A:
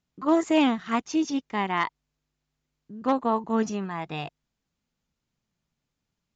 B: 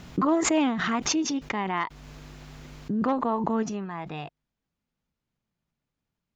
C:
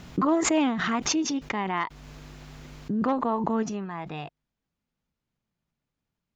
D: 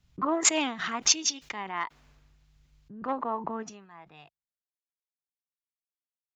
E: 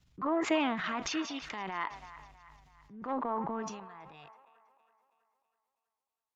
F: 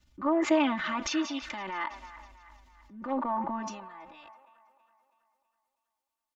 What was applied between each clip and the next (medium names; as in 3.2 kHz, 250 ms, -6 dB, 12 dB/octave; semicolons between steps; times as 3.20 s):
treble shelf 4.9 kHz -11 dB; swell ahead of each attack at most 21 dB/s; trim -2.5 dB
no audible change
bass shelf 480 Hz -11 dB; three bands expanded up and down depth 100%; trim -2.5 dB
feedback echo behind a band-pass 325 ms, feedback 50%, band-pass 1.2 kHz, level -16 dB; transient shaper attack -6 dB, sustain +7 dB; low-pass that closes with the level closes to 2.5 kHz, closed at -25 dBFS; trim -2 dB
comb 3.4 ms, depth 93%